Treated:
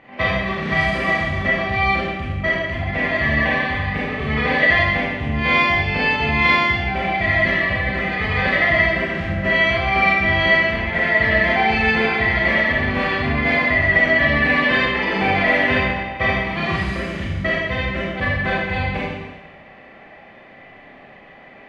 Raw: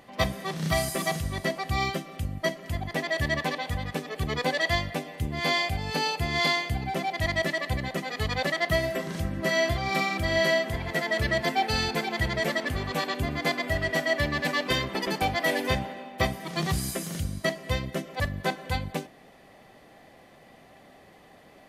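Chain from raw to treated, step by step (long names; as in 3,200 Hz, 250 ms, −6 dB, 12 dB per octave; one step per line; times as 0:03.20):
low-pass with resonance 2,300 Hz, resonance Q 2.3
four-comb reverb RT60 1.2 s, combs from 28 ms, DRR −7 dB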